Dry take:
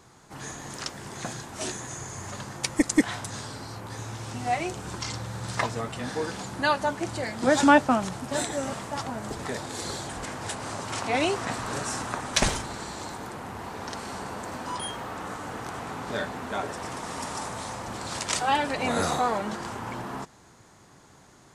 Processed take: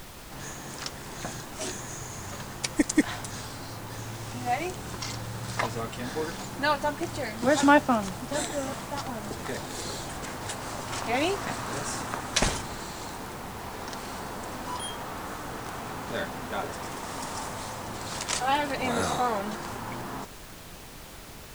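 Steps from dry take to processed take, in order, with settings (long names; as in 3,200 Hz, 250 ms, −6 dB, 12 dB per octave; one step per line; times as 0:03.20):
background noise pink −43 dBFS
level −1.5 dB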